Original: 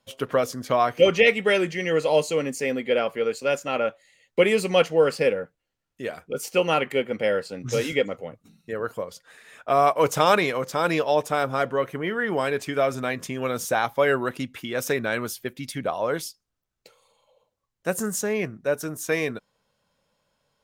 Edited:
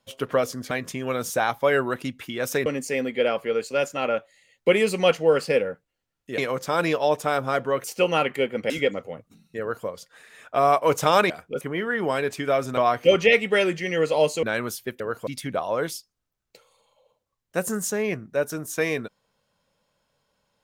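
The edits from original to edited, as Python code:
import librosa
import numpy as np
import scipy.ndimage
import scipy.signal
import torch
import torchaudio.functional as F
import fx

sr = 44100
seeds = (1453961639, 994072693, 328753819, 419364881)

y = fx.edit(x, sr, fx.swap(start_s=0.71, length_s=1.66, other_s=13.06, other_length_s=1.95),
    fx.swap(start_s=6.09, length_s=0.31, other_s=10.44, other_length_s=1.46),
    fx.cut(start_s=7.26, length_s=0.58),
    fx.duplicate(start_s=8.74, length_s=0.27, to_s=15.58), tone=tone)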